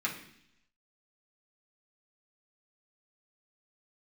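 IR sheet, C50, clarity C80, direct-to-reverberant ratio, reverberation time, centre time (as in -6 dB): 8.0 dB, 11.5 dB, -4.5 dB, 0.70 s, 21 ms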